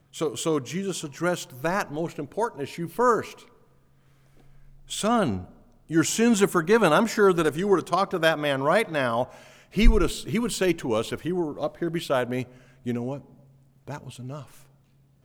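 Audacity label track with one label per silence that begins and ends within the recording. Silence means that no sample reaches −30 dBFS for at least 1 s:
3.280000	4.910000	silence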